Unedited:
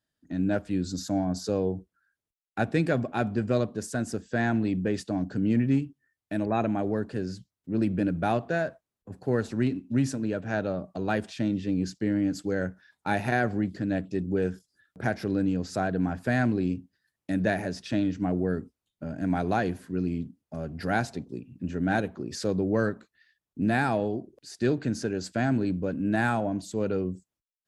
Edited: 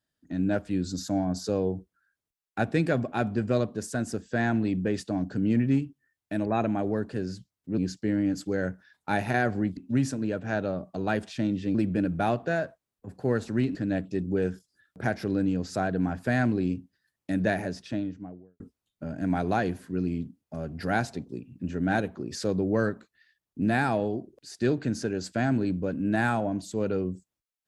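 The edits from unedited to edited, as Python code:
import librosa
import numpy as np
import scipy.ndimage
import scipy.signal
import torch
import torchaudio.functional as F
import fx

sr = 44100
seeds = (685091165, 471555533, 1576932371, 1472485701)

y = fx.studio_fade_out(x, sr, start_s=17.53, length_s=1.07)
y = fx.edit(y, sr, fx.swap(start_s=7.78, length_s=2.0, other_s=11.76, other_length_s=1.99), tone=tone)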